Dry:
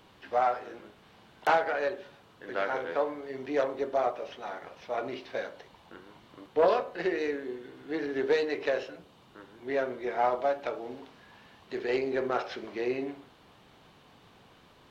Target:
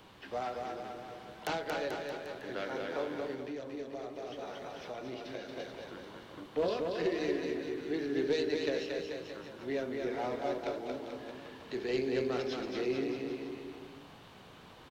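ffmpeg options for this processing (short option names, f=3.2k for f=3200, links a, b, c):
-filter_complex "[0:a]acrossover=split=360|3000[a][b][c];[b]acompressor=threshold=-53dB:ratio=2[d];[a][d][c]amix=inputs=3:normalize=0,aecho=1:1:230|437|623.3|791|941.9:0.631|0.398|0.251|0.158|0.1,asettb=1/sr,asplit=3[e][f][g];[e]atrim=end=3.334[h];[f]atrim=start=3.33:end=5.49,asetpts=PTS-STARTPTS,afade=t=in:d=0.004:c=qsin,afade=t=out:st=2.156:d=0.004:c=qsin,acompressor=threshold=-39dB:ratio=10[i];[g]atrim=start=5.486[j];[h][i]acrossfade=d=0.004:c1=hsin:c2=qsin[k];[k][j]acrossfade=d=0.004:c1=qsin:c2=hsin,volume=1.5dB"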